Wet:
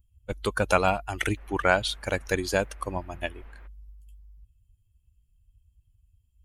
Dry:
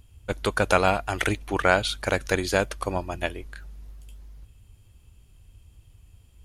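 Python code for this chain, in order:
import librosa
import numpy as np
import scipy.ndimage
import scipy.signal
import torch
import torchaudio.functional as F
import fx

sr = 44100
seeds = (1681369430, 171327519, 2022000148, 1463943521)

y = fx.bin_expand(x, sr, power=1.5)
y = fx.dmg_noise_band(y, sr, seeds[0], low_hz=150.0, high_hz=2100.0, level_db=-58.0, at=(1.36, 3.66), fade=0.02)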